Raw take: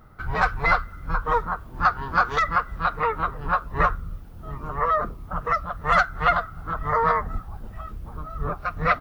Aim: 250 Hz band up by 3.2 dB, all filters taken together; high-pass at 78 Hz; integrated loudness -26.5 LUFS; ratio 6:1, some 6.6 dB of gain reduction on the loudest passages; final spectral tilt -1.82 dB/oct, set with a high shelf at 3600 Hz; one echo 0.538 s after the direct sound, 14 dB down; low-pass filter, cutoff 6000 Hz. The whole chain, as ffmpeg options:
-af "highpass=78,lowpass=6k,equalizer=f=250:t=o:g=6,highshelf=f=3.6k:g=-9,acompressor=threshold=-22dB:ratio=6,aecho=1:1:538:0.2,volume=2.5dB"

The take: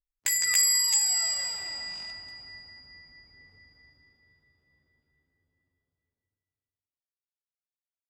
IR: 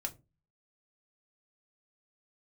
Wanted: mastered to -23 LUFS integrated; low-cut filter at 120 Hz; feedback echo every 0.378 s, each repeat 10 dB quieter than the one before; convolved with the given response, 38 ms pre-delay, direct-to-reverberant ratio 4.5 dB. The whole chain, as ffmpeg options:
-filter_complex "[0:a]highpass=120,aecho=1:1:378|756|1134|1512:0.316|0.101|0.0324|0.0104,asplit=2[a][b];[1:a]atrim=start_sample=2205,adelay=38[c];[b][c]afir=irnorm=-1:irlink=0,volume=-4dB[d];[a][d]amix=inputs=2:normalize=0,volume=-0.5dB"

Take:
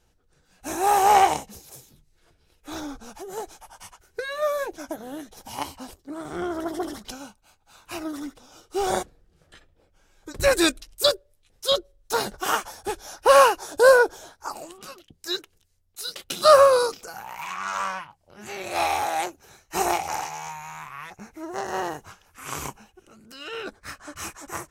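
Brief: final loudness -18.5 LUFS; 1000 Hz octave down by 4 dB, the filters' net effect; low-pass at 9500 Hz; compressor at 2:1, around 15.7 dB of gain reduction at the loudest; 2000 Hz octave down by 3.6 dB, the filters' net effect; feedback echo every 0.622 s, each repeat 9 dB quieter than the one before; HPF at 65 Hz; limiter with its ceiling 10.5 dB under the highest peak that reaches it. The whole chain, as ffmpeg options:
-af "highpass=65,lowpass=9.5k,equalizer=f=1k:t=o:g=-4.5,equalizer=f=2k:t=o:g=-3,acompressor=threshold=-42dB:ratio=2,alimiter=level_in=6dB:limit=-24dB:level=0:latency=1,volume=-6dB,aecho=1:1:622|1244|1866|2488:0.355|0.124|0.0435|0.0152,volume=23.5dB"

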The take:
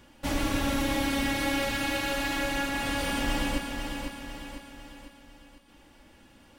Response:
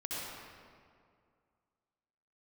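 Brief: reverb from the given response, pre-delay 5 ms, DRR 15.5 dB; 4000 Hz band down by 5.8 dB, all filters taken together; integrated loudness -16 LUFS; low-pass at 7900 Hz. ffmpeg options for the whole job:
-filter_complex "[0:a]lowpass=7.9k,equalizer=f=4k:t=o:g=-8,asplit=2[a][b];[1:a]atrim=start_sample=2205,adelay=5[c];[b][c]afir=irnorm=-1:irlink=0,volume=-18.5dB[d];[a][d]amix=inputs=2:normalize=0,volume=14.5dB"

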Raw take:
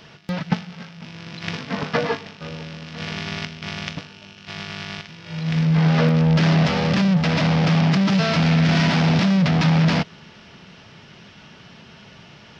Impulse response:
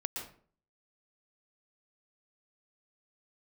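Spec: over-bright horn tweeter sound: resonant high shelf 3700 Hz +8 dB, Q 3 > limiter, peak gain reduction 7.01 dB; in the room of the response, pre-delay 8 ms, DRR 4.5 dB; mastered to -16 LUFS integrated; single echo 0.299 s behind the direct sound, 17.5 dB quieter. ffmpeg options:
-filter_complex "[0:a]aecho=1:1:299:0.133,asplit=2[a][b];[1:a]atrim=start_sample=2205,adelay=8[c];[b][c]afir=irnorm=-1:irlink=0,volume=-6dB[d];[a][d]amix=inputs=2:normalize=0,highshelf=f=3.7k:t=q:w=3:g=8,volume=4dB,alimiter=limit=-5.5dB:level=0:latency=1"

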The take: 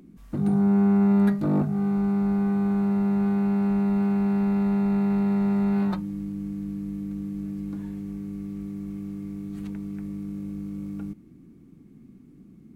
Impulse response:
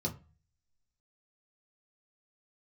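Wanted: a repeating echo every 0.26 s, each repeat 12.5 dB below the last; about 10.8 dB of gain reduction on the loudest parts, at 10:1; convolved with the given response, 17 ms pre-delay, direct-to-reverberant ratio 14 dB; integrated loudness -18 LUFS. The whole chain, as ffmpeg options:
-filter_complex "[0:a]acompressor=threshold=-28dB:ratio=10,aecho=1:1:260|520|780:0.237|0.0569|0.0137,asplit=2[a][b];[1:a]atrim=start_sample=2205,adelay=17[c];[b][c]afir=irnorm=-1:irlink=0,volume=-17dB[d];[a][d]amix=inputs=2:normalize=0,volume=12.5dB"

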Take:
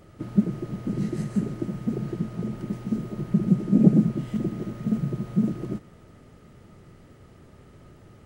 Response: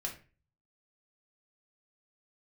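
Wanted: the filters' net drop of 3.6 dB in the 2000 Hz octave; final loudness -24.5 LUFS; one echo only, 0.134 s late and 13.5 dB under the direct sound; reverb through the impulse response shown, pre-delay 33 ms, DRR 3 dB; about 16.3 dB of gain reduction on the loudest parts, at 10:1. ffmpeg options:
-filter_complex "[0:a]equalizer=f=2k:t=o:g=-4.5,acompressor=threshold=-26dB:ratio=10,aecho=1:1:134:0.211,asplit=2[a][b];[1:a]atrim=start_sample=2205,adelay=33[c];[b][c]afir=irnorm=-1:irlink=0,volume=-3.5dB[d];[a][d]amix=inputs=2:normalize=0,volume=6dB"

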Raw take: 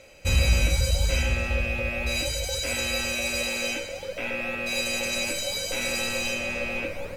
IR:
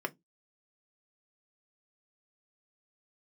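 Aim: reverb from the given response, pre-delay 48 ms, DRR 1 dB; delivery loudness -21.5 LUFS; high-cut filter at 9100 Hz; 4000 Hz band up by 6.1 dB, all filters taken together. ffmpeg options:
-filter_complex "[0:a]lowpass=9.1k,equalizer=f=4k:t=o:g=7,asplit=2[a][b];[1:a]atrim=start_sample=2205,adelay=48[c];[b][c]afir=irnorm=-1:irlink=0,volume=-5.5dB[d];[a][d]amix=inputs=2:normalize=0,volume=1dB"

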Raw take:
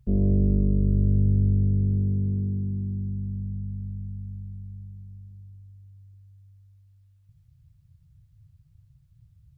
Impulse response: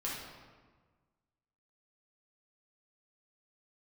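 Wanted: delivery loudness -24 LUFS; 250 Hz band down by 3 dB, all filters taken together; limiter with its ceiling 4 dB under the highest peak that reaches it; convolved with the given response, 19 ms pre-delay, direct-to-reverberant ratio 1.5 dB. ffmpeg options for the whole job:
-filter_complex "[0:a]equalizer=f=250:t=o:g=-4.5,alimiter=limit=-16dB:level=0:latency=1,asplit=2[a][b];[1:a]atrim=start_sample=2205,adelay=19[c];[b][c]afir=irnorm=-1:irlink=0,volume=-4.5dB[d];[a][d]amix=inputs=2:normalize=0,volume=3dB"

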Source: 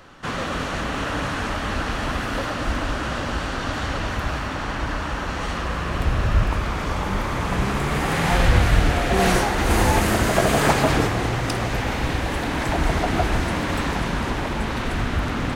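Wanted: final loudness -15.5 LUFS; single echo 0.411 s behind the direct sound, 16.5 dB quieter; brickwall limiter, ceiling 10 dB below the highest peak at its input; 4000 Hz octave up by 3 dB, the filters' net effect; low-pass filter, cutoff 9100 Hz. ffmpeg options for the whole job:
-af "lowpass=9.1k,equalizer=f=4k:t=o:g=4,alimiter=limit=-13dB:level=0:latency=1,aecho=1:1:411:0.15,volume=8.5dB"

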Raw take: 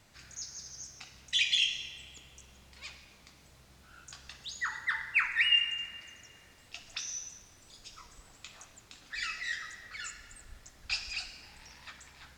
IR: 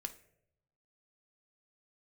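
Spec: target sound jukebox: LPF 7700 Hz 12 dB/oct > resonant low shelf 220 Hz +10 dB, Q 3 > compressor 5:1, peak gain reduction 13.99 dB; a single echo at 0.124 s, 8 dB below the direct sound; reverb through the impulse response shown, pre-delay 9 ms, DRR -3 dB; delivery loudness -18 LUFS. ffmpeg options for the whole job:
-filter_complex "[0:a]aecho=1:1:124:0.398,asplit=2[a][b];[1:a]atrim=start_sample=2205,adelay=9[c];[b][c]afir=irnorm=-1:irlink=0,volume=5.5dB[d];[a][d]amix=inputs=2:normalize=0,lowpass=7.7k,lowshelf=f=220:t=q:w=3:g=10,acompressor=threshold=-31dB:ratio=5,volume=18.5dB"

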